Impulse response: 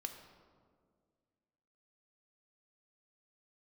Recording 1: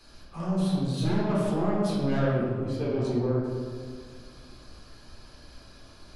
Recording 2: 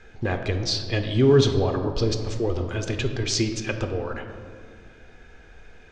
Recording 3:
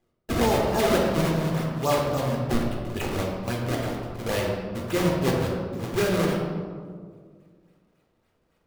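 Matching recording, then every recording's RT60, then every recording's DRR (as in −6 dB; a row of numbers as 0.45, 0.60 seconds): 2; 1.9, 1.9, 1.9 seconds; −7.0, 5.5, −2.0 decibels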